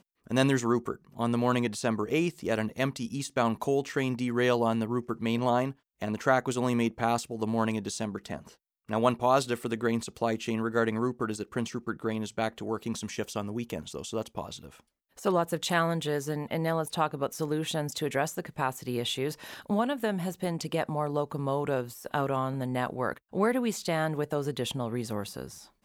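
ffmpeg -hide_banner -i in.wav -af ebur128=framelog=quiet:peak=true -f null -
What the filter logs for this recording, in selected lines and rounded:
Integrated loudness:
  I:         -30.2 LUFS
  Threshold: -40.4 LUFS
Loudness range:
  LRA:         3.5 LU
  Threshold: -50.4 LUFS
  LRA low:   -32.3 LUFS
  LRA high:  -28.9 LUFS
True peak:
  Peak:       -9.7 dBFS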